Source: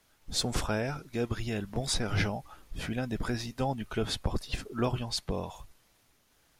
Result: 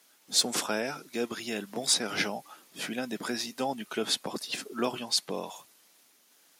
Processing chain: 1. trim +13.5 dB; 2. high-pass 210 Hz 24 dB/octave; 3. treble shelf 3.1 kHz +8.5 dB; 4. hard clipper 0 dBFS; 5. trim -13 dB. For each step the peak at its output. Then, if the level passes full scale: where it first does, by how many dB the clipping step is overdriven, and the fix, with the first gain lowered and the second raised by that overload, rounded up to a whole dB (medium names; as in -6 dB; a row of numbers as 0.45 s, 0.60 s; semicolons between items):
-1.0 dBFS, -3.0 dBFS, +4.0 dBFS, 0.0 dBFS, -13.0 dBFS; step 3, 4.0 dB; step 1 +9.5 dB, step 5 -9 dB